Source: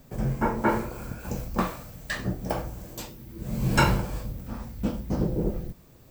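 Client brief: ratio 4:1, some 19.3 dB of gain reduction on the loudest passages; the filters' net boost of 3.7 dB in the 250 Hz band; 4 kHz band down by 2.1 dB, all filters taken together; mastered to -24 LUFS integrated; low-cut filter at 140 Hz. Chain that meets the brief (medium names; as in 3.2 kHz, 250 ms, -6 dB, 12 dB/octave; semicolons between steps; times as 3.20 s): high-pass 140 Hz; peaking EQ 250 Hz +6 dB; peaking EQ 4 kHz -3 dB; compression 4:1, threshold -40 dBFS; trim +18.5 dB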